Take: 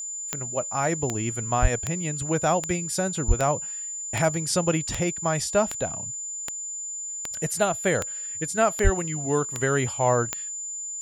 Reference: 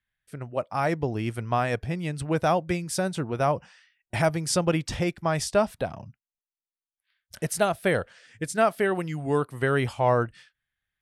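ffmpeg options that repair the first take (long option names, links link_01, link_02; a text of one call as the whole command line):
ffmpeg -i in.wav -filter_complex "[0:a]adeclick=threshold=4,bandreject=frequency=7100:width=30,asplit=3[link_01][link_02][link_03];[link_01]afade=type=out:start_time=1.61:duration=0.02[link_04];[link_02]highpass=frequency=140:width=0.5412,highpass=frequency=140:width=1.3066,afade=type=in:start_time=1.61:duration=0.02,afade=type=out:start_time=1.73:duration=0.02[link_05];[link_03]afade=type=in:start_time=1.73:duration=0.02[link_06];[link_04][link_05][link_06]amix=inputs=3:normalize=0,asplit=3[link_07][link_08][link_09];[link_07]afade=type=out:start_time=3.27:duration=0.02[link_10];[link_08]highpass=frequency=140:width=0.5412,highpass=frequency=140:width=1.3066,afade=type=in:start_time=3.27:duration=0.02,afade=type=out:start_time=3.39:duration=0.02[link_11];[link_09]afade=type=in:start_time=3.39:duration=0.02[link_12];[link_10][link_11][link_12]amix=inputs=3:normalize=0,asplit=3[link_13][link_14][link_15];[link_13]afade=type=out:start_time=8.83:duration=0.02[link_16];[link_14]highpass=frequency=140:width=0.5412,highpass=frequency=140:width=1.3066,afade=type=in:start_time=8.83:duration=0.02,afade=type=out:start_time=8.95:duration=0.02[link_17];[link_15]afade=type=in:start_time=8.95:duration=0.02[link_18];[link_16][link_17][link_18]amix=inputs=3:normalize=0" out.wav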